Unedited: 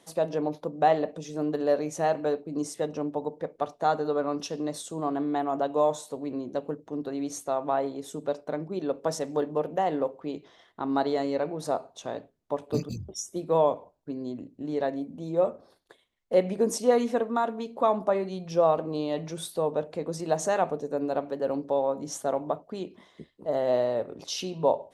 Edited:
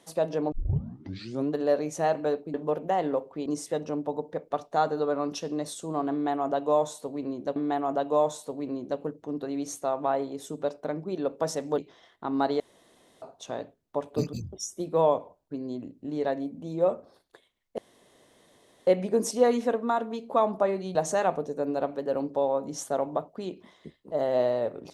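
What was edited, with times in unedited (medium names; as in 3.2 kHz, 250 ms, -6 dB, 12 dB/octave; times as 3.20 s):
0.52 s: tape start 0.99 s
5.20–6.64 s: loop, 2 plays
9.42–10.34 s: move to 2.54 s
11.16–11.78 s: room tone
16.34 s: insert room tone 1.09 s
18.42–20.29 s: delete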